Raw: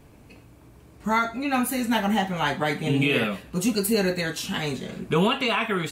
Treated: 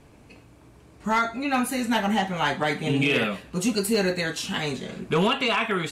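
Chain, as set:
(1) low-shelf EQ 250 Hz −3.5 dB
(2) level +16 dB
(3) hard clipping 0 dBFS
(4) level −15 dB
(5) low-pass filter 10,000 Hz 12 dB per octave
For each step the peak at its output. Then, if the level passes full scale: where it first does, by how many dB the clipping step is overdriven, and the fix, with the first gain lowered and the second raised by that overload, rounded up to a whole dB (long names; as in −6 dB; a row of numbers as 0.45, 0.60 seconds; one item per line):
−10.5, +5.5, 0.0, −15.0, −14.5 dBFS
step 2, 5.5 dB
step 2 +10 dB, step 4 −9 dB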